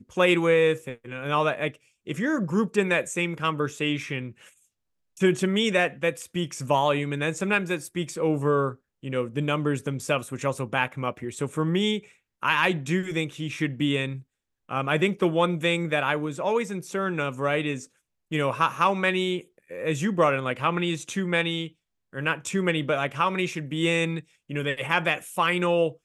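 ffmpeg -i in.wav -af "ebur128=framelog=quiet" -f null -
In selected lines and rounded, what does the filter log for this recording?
Integrated loudness:
  I:         -25.7 LUFS
  Threshold: -36.1 LUFS
Loudness range:
  LRA:         2.1 LU
  Threshold: -46.3 LUFS
  LRA low:   -27.4 LUFS
  LRA high:  -25.3 LUFS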